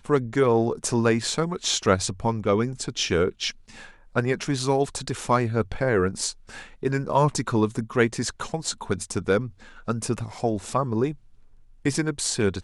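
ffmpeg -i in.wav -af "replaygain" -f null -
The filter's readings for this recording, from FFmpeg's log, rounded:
track_gain = +4.4 dB
track_peak = 0.364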